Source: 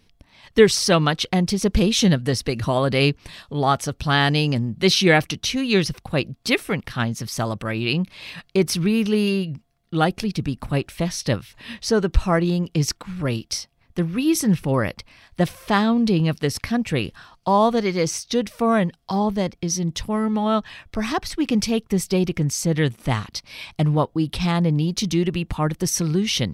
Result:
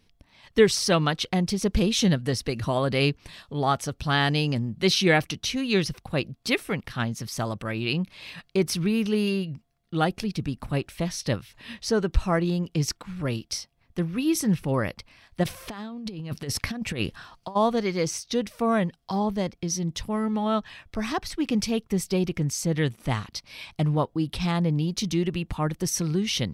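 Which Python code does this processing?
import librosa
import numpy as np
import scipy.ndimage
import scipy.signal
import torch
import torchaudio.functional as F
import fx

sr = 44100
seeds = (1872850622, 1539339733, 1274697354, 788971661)

y = fx.over_compress(x, sr, threshold_db=-24.0, ratio=-0.5, at=(15.43, 17.55), fade=0.02)
y = F.gain(torch.from_numpy(y), -4.5).numpy()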